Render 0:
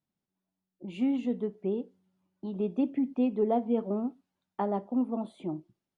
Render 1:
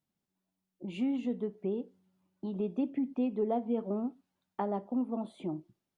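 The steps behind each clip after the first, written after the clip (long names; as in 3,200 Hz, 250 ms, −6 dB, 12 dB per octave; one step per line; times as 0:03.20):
downward compressor 1.5 to 1, threshold −37 dBFS, peak gain reduction 5.5 dB
level +1 dB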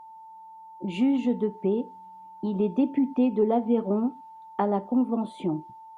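notch filter 660 Hz, Q 14
steady tone 890 Hz −52 dBFS
level +8.5 dB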